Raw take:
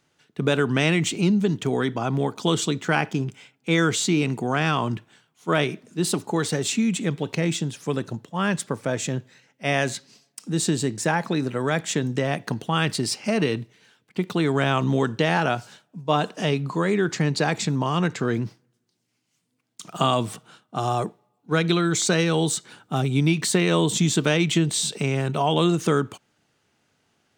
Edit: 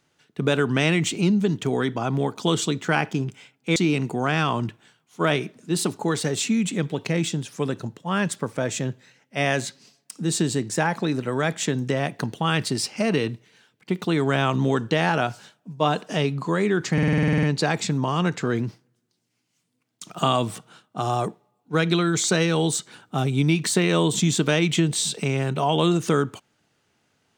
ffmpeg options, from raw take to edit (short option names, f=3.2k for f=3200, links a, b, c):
-filter_complex "[0:a]asplit=12[a][b][c][d][e][f][g][h][i][j][k][l];[a]atrim=end=3.762[m];[b]atrim=start=4.038:end=17.262[n];[c]atrim=start=17.208:end=17.262[o];[d]atrim=start=17.208:end=17.262[p];[e]atrim=start=17.208:end=17.262[q];[f]atrim=start=17.208:end=17.262[r];[g]atrim=start=17.208:end=17.262[s];[h]atrim=start=17.208:end=17.262[t];[i]atrim=start=17.208:end=17.262[u];[j]atrim=start=17.208:end=17.262[v];[k]atrim=start=17.208:end=17.262[w];[l]atrim=start=17.208[x];[m][n]acrossfade=d=0.004:c1=hsin:c2=hsin[y];[y][o]acrossfade=d=0.004:c1=hsin:c2=hsin[z];[z][p]acrossfade=d=0.004:c1=hsin:c2=hsin[aa];[aa][q]acrossfade=d=0.004:c1=hsin:c2=hsin[ab];[ab][r]acrossfade=d=0.004:c1=hsin:c2=hsin[ac];[ac][s]acrossfade=d=0.004:c1=hsin:c2=hsin[ad];[ad][t]acrossfade=d=0.004:c1=hsin:c2=hsin[ae];[ae][u]acrossfade=d=0.004:c1=hsin:c2=hsin[af];[af][v]acrossfade=d=0.004:c1=hsin:c2=hsin[ag];[ag][w]acrossfade=d=0.004:c1=hsin:c2=hsin[ah];[ah][x]acrossfade=d=0.004:c1=hsin:c2=hsin"